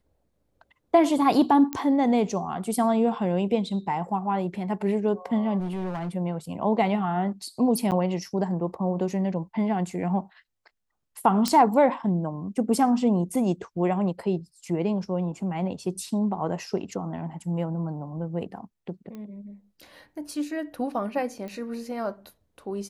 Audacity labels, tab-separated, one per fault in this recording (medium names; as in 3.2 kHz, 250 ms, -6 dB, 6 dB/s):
1.730000	1.730000	pop -14 dBFS
5.590000	6.090000	clipped -27 dBFS
7.910000	7.920000	dropout 8.6 ms
11.480000	11.480000	pop -9 dBFS
19.150000	19.150000	pop -28 dBFS
21.480000	21.480000	pop -26 dBFS